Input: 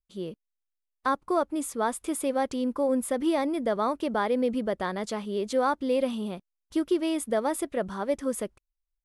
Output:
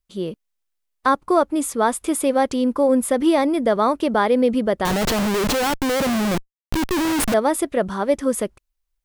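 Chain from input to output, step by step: 4.85–7.34 Schmitt trigger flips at -38.5 dBFS; gain +8.5 dB

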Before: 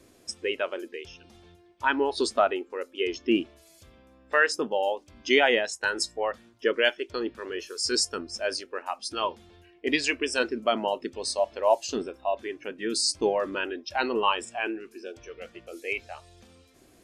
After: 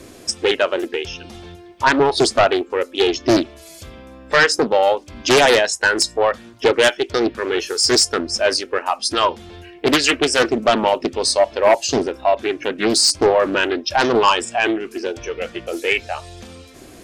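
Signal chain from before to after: in parallel at -1 dB: compressor, threshold -37 dBFS, peak gain reduction 19.5 dB; on the sum: sine folder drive 7 dB, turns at -7 dBFS; Doppler distortion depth 0.55 ms

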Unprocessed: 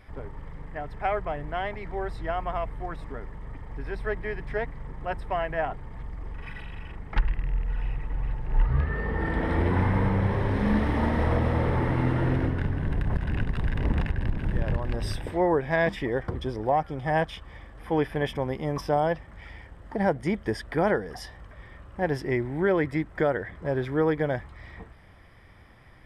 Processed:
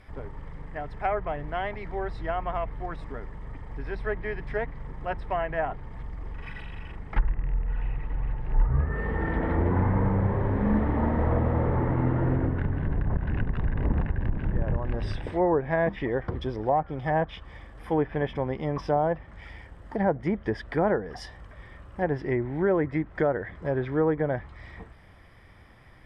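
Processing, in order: treble ducked by the level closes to 1400 Hz, closed at -21 dBFS

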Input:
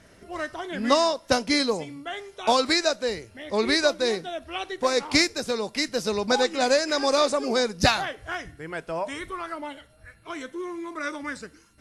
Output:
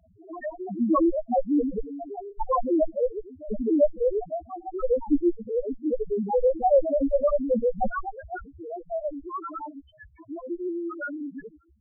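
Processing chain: local time reversal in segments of 0.1 s; added harmonics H 8 -11 dB, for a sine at -5 dBFS; loudest bins only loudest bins 1; gain +8.5 dB

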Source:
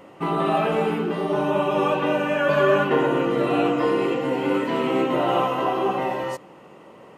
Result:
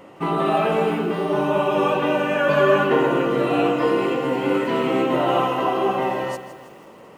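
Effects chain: lo-fi delay 0.162 s, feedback 55%, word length 8-bit, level -12.5 dB; gain +1.5 dB

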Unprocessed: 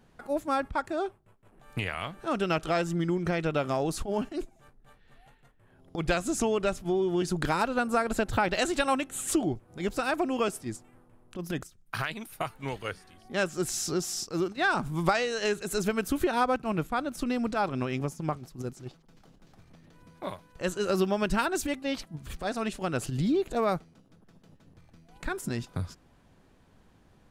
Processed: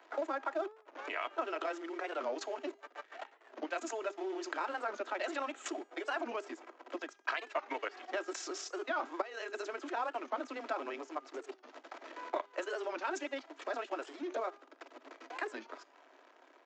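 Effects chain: in parallel at -3.5 dB: companded quantiser 4-bit; on the sum: downsampling 16000 Hz; level quantiser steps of 17 dB; granular stretch 0.61×, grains 57 ms; compressor 12:1, threshold -44 dBFS, peak gain reduction 27 dB; steep high-pass 250 Hz 96 dB/oct; three-band isolator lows -24 dB, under 390 Hz, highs -12 dB, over 2600 Hz; comb 3.1 ms, depth 31%; de-hum 405 Hz, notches 28; record warp 45 rpm, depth 160 cents; gain +14 dB

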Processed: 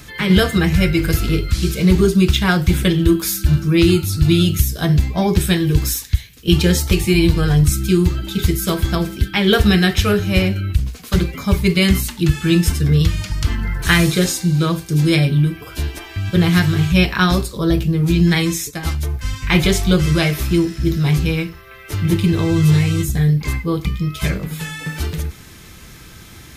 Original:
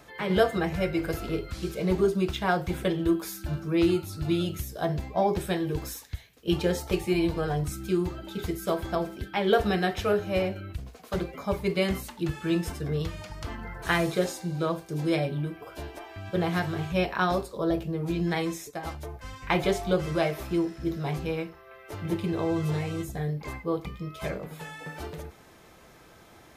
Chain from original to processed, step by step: passive tone stack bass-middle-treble 6-0-2; maximiser +33 dB; gain -1 dB

